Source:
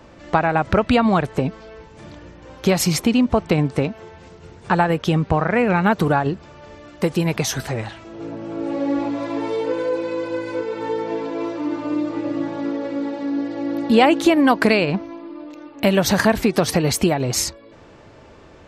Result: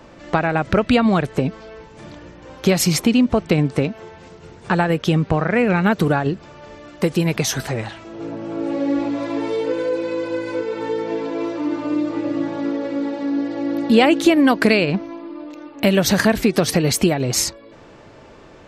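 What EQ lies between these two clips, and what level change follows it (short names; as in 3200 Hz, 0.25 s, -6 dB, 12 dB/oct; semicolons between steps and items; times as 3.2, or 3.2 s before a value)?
dynamic EQ 920 Hz, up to -6 dB, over -32 dBFS, Q 1.4; bell 73 Hz -6.5 dB 0.77 oct; +2.0 dB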